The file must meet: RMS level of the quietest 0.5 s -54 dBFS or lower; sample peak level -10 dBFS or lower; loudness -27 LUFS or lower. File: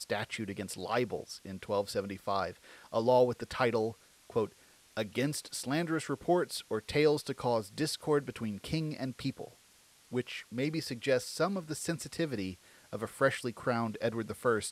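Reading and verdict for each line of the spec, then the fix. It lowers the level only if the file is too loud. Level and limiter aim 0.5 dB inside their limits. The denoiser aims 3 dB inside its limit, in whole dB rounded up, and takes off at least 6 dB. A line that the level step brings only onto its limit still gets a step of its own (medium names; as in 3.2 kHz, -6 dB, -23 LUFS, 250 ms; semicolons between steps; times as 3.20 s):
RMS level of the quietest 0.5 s -63 dBFS: pass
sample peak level -14.0 dBFS: pass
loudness -33.5 LUFS: pass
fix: none needed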